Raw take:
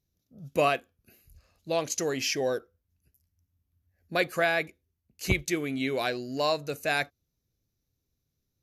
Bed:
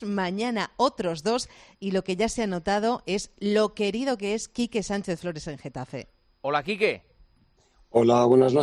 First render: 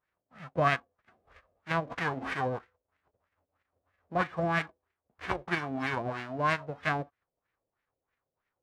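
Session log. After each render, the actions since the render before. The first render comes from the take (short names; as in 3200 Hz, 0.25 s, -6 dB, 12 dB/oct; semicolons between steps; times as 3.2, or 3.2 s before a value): spectral whitening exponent 0.1; LFO low-pass sine 3.1 Hz 520–2000 Hz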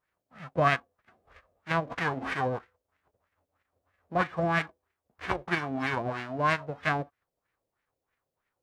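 gain +2 dB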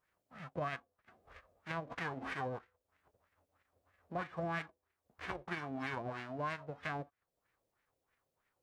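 limiter -18 dBFS, peak gain reduction 6.5 dB; compressor 1.5:1, threshold -55 dBFS, peak gain reduction 11.5 dB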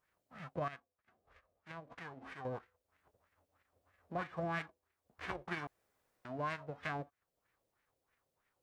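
0.68–2.45 gain -9 dB; 5.67–6.25 room tone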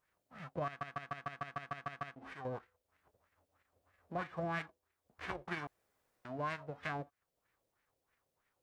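0.66 stutter in place 0.15 s, 10 plays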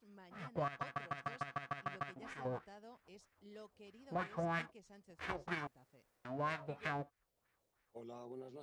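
add bed -32.5 dB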